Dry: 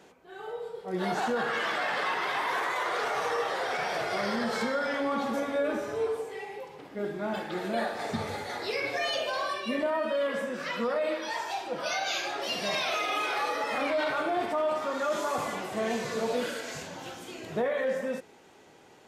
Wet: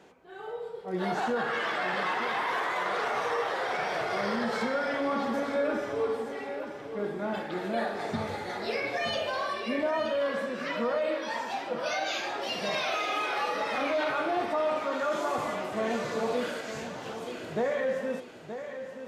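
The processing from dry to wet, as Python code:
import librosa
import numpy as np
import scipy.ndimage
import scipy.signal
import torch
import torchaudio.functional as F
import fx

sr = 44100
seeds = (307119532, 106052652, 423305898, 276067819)

p1 = fx.high_shelf(x, sr, hz=5300.0, db=-7.5)
y = p1 + fx.echo_feedback(p1, sr, ms=924, feedback_pct=37, wet_db=-10, dry=0)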